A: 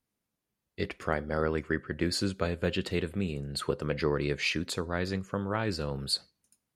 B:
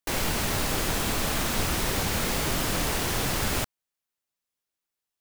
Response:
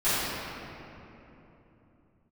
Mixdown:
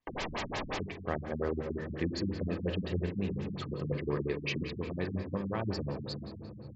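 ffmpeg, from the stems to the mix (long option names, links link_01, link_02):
-filter_complex "[0:a]deesser=0.7,volume=-4.5dB,asplit=3[link_01][link_02][link_03];[link_02]volume=-19dB[link_04];[1:a]asplit=2[link_05][link_06];[link_06]highpass=frequency=720:poles=1,volume=23dB,asoftclip=type=tanh:threshold=-13.5dB[link_07];[link_05][link_07]amix=inputs=2:normalize=0,lowpass=frequency=2100:poles=1,volume=-6dB,volume=-9.5dB[link_08];[link_03]apad=whole_len=229557[link_09];[link_08][link_09]sidechaincompress=threshold=-52dB:ratio=6:attack=24:release=629[link_10];[2:a]atrim=start_sample=2205[link_11];[link_04][link_11]afir=irnorm=-1:irlink=0[link_12];[link_01][link_10][link_12]amix=inputs=3:normalize=0,bandreject=frequency=1400:width=5.2,afftfilt=real='re*lt(b*sr/1024,250*pow(7900/250,0.5+0.5*sin(2*PI*5.6*pts/sr)))':imag='im*lt(b*sr/1024,250*pow(7900/250,0.5+0.5*sin(2*PI*5.6*pts/sr)))':win_size=1024:overlap=0.75"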